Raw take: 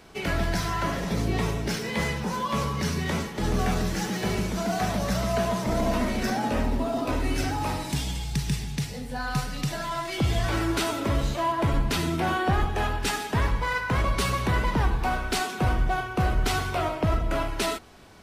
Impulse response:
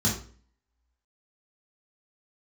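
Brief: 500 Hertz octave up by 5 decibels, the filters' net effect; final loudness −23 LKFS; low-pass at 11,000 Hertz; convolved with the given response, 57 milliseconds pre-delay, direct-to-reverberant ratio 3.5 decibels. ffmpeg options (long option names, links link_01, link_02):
-filter_complex "[0:a]lowpass=11000,equalizer=frequency=500:width_type=o:gain=7,asplit=2[link_01][link_02];[1:a]atrim=start_sample=2205,adelay=57[link_03];[link_02][link_03]afir=irnorm=-1:irlink=0,volume=-13.5dB[link_04];[link_01][link_04]amix=inputs=2:normalize=0,volume=-4dB"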